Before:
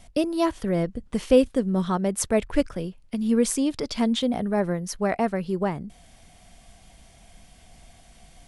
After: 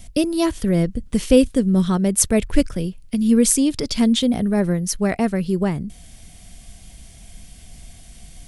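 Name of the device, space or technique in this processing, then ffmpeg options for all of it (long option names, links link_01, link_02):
smiley-face EQ: -af "lowshelf=frequency=180:gain=5,equalizer=frequency=880:width_type=o:width=1.8:gain=-8,highshelf=frequency=7300:gain=8,volume=6dB"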